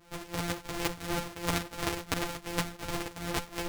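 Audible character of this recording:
a buzz of ramps at a fixed pitch in blocks of 256 samples
tremolo triangle 2.8 Hz, depth 95%
a shimmering, thickened sound

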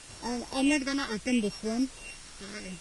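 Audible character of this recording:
a buzz of ramps at a fixed pitch in blocks of 16 samples
phaser sweep stages 6, 0.73 Hz, lowest notch 660–3,000 Hz
a quantiser's noise floor 8 bits, dither triangular
Ogg Vorbis

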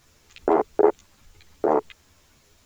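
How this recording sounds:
a quantiser's noise floor 10 bits, dither none
a shimmering, thickened sound

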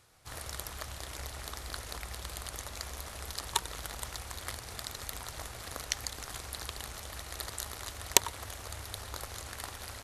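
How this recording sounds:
background noise floor −47 dBFS
spectral slope −2.0 dB per octave

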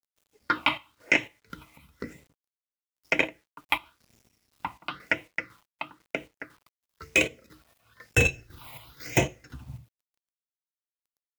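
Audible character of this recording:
phaser sweep stages 6, 1 Hz, lowest notch 420–1,300 Hz
a quantiser's noise floor 10 bits, dither none
chopped level 2 Hz, depth 60%, duty 55%

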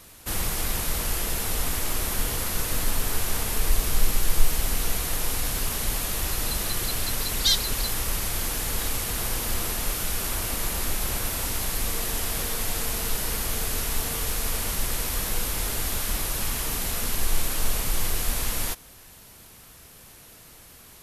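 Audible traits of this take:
background noise floor −49 dBFS
spectral slope −2.0 dB per octave

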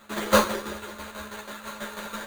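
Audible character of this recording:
a buzz of ramps at a fixed pitch in blocks of 8 samples
tremolo saw down 6.1 Hz, depth 70%
aliases and images of a low sample rate 5,300 Hz, jitter 0%
a shimmering, thickened sound

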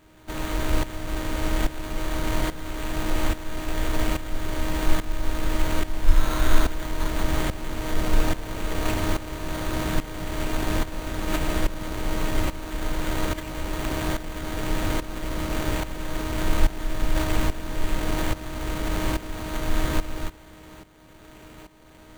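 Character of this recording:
a buzz of ramps at a fixed pitch in blocks of 8 samples
tremolo saw up 1.2 Hz, depth 80%
aliases and images of a low sample rate 5,200 Hz, jitter 0%

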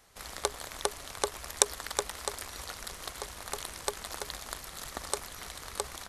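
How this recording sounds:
background noise floor −47 dBFS
spectral slope −2.0 dB per octave

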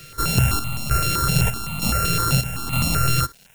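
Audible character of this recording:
a buzz of ramps at a fixed pitch in blocks of 32 samples
chopped level 1.1 Hz, depth 60%, duty 65%
a quantiser's noise floor 8 bits, dither none
notches that jump at a steady rate 7.8 Hz 240–1,600 Hz

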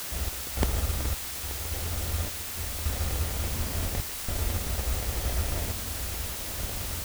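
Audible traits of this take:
aliases and images of a low sample rate 1,300 Hz, jitter 0%
sample-and-hold tremolo, depth 90%
a quantiser's noise floor 6 bits, dither triangular

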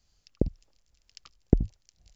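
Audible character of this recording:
tremolo triangle 2 Hz, depth 45%

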